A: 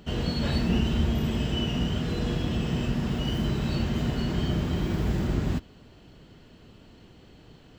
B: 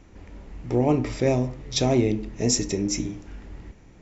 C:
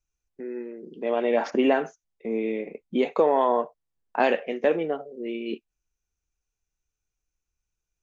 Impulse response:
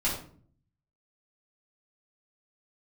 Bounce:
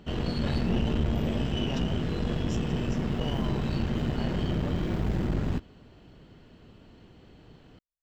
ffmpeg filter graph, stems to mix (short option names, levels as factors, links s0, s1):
-filter_complex "[0:a]volume=1.26[s0];[1:a]volume=0.178[s1];[2:a]volume=0.15[s2];[s0][s1][s2]amix=inputs=3:normalize=0,highshelf=f=4300:g=-8.5,aeval=exprs='(tanh(11.2*val(0)+0.6)-tanh(0.6))/11.2':c=same"